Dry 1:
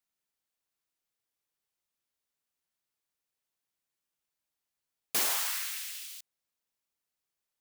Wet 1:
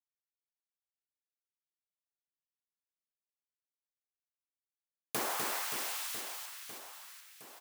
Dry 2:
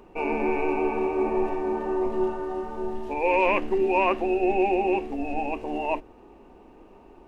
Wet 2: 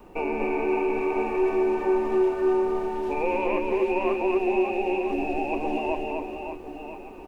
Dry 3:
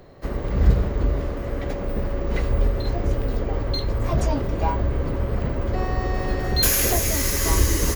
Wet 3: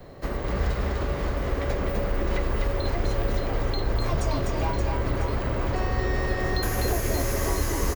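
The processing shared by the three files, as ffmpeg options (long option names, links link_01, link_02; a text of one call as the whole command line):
ffmpeg -i in.wav -filter_complex "[0:a]adynamicequalizer=threshold=0.0158:dfrequency=370:dqfactor=7.4:tfrequency=370:tqfactor=7.4:attack=5:release=100:ratio=0.375:range=2.5:mode=boostabove:tftype=bell,acrossover=split=640|1500[link_01][link_02][link_03];[link_01]acompressor=threshold=-30dB:ratio=4[link_04];[link_02]acompressor=threshold=-39dB:ratio=4[link_05];[link_03]acompressor=threshold=-41dB:ratio=4[link_06];[link_04][link_05][link_06]amix=inputs=3:normalize=0,acrusher=bits=11:mix=0:aa=0.000001,aecho=1:1:250|575|997.5|1547|2261:0.631|0.398|0.251|0.158|0.1,volume=3dB" out.wav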